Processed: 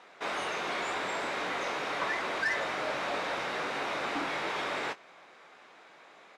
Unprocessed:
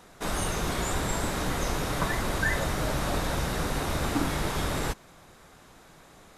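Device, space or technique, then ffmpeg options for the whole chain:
intercom: -filter_complex "[0:a]highpass=450,lowpass=3.8k,equalizer=f=2.3k:t=o:w=0.52:g=5,asoftclip=type=tanh:threshold=-24dB,asplit=2[a][b];[b]adelay=21,volume=-11dB[c];[a][c]amix=inputs=2:normalize=0"

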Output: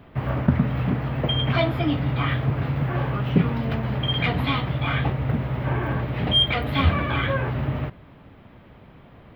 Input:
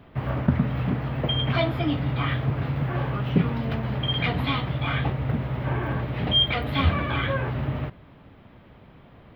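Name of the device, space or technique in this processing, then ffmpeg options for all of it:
exciter from parts: -filter_complex "[0:a]asplit=2[a][b];[b]highpass=f=3.6k:p=1,asoftclip=type=tanh:threshold=-23dB,highpass=f=2.9k:w=0.5412,highpass=f=2.9k:w=1.3066,volume=-13.5dB[c];[a][c]amix=inputs=2:normalize=0,volume=2dB"

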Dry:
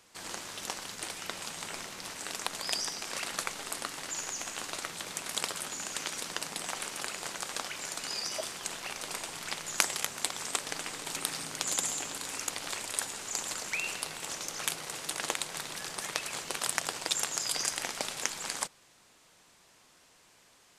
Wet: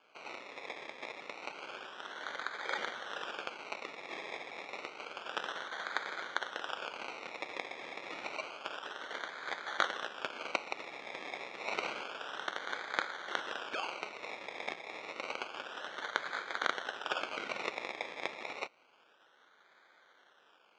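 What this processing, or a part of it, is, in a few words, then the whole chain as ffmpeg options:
circuit-bent sampling toy: -af "acrusher=samples=23:mix=1:aa=0.000001:lfo=1:lforange=13.8:lforate=0.29,highpass=560,equalizer=f=690:t=q:w=4:g=-3,equalizer=f=1k:t=q:w=4:g=-3,equalizer=f=1.5k:t=q:w=4:g=7,equalizer=f=2.3k:t=q:w=4:g=7,equalizer=f=3.3k:t=q:w=4:g=4,equalizer=f=4.8k:t=q:w=4:g=-3,lowpass=f=5.5k:w=0.5412,lowpass=f=5.5k:w=1.3066,volume=-2dB"

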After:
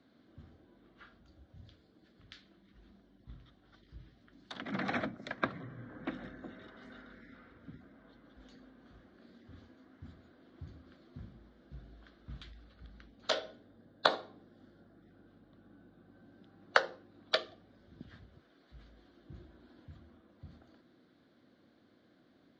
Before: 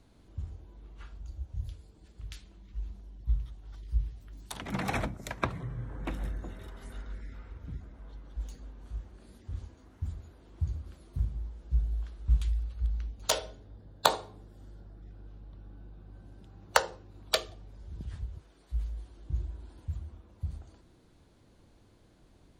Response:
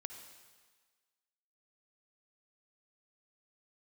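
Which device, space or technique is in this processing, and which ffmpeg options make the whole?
kitchen radio: -af "highpass=230,equalizer=f=250:t=q:w=4:g=5,equalizer=f=420:t=q:w=4:g=-5,equalizer=f=910:t=q:w=4:g=-10,equalizer=f=1.6k:t=q:w=4:g=3,equalizer=f=2.6k:t=q:w=4:g=-8,lowpass=f=4.2k:w=0.5412,lowpass=f=4.2k:w=1.3066"

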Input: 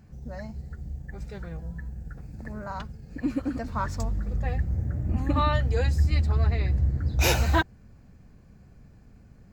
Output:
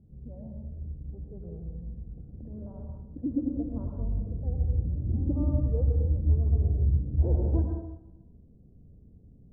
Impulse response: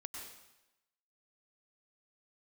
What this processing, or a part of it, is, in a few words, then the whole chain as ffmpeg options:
next room: -filter_complex "[0:a]lowpass=f=500:w=0.5412,lowpass=f=500:w=1.3066[a];[1:a]atrim=start_sample=2205[b];[a][b]afir=irnorm=-1:irlink=0,volume=1.5dB"

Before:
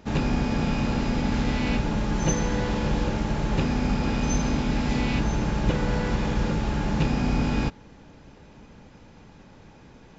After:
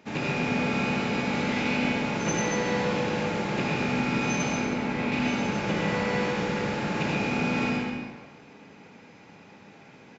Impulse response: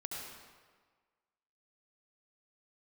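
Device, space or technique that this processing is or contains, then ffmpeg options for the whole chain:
PA in a hall: -filter_complex "[0:a]asettb=1/sr,asplit=3[a][b][c];[a]atrim=end=4.534[d];[b]atrim=start=4.53:end=5.12,asetpts=PTS-STARTPTS,afade=t=in:d=0.004:c=qsin,afade=t=out:st=0.586:d=0.004:c=qsin,highshelf=f=2.6k:g=-10.5[e];[c]atrim=start=5.116[f];[d][e]acrossfade=d=0.004:c1=hsin:c2=qsin[g];[g][f]acrossfade=d=0.004:c1=qsin:c2=hsin,highpass=180,equalizer=f=2.3k:t=o:w=0.55:g=7.5,aecho=1:1:138:0.398[h];[1:a]atrim=start_sample=2205[i];[h][i]afir=irnorm=-1:irlink=0"

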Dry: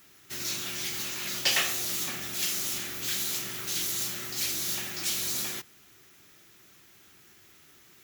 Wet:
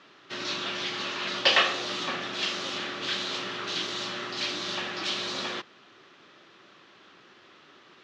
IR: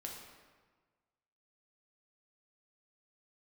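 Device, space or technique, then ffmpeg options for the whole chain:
kitchen radio: -af "highpass=220,equalizer=f=540:t=q:w=4:g=6,equalizer=f=1.1k:t=q:w=4:g=6,equalizer=f=2.2k:t=q:w=4:g=-5,lowpass=f=4k:w=0.5412,lowpass=f=4k:w=1.3066,volume=7dB"

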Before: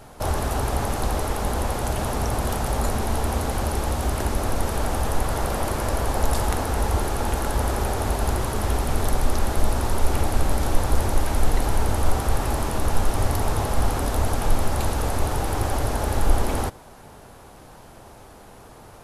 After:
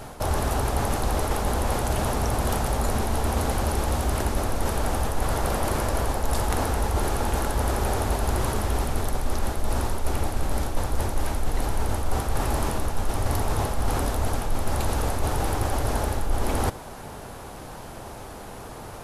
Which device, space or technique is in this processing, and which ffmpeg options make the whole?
compression on the reversed sound: -af "areverse,acompressor=threshold=-28dB:ratio=4,areverse,volume=6.5dB"

